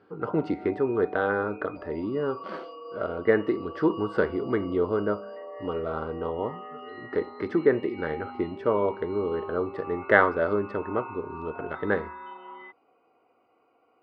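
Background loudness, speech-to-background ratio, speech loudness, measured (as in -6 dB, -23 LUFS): -42.0 LUFS, 14.0 dB, -28.0 LUFS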